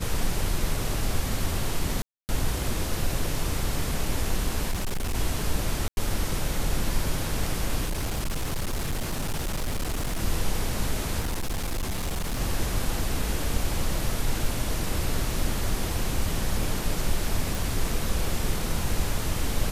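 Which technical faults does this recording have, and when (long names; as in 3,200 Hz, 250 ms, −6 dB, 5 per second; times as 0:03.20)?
0:02.02–0:02.29: drop-out 269 ms
0:04.71–0:05.15: clipping −24 dBFS
0:05.88–0:05.97: drop-out 91 ms
0:07.85–0:10.23: clipping −24 dBFS
0:11.19–0:12.41: clipping −24.5 dBFS
0:17.55: click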